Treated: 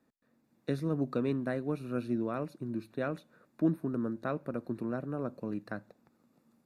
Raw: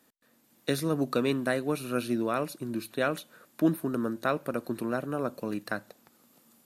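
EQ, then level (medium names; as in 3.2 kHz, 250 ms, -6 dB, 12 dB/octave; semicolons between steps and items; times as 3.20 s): RIAA curve playback; bass shelf 89 Hz -11.5 dB; band-stop 3.1 kHz, Q 5.5; -8.0 dB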